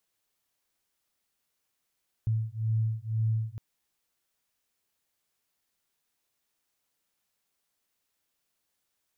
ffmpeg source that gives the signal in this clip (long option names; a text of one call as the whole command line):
ffmpeg -f lavfi -i "aevalsrc='0.0355*(sin(2*PI*110*t)+sin(2*PI*112*t))':duration=1.31:sample_rate=44100" out.wav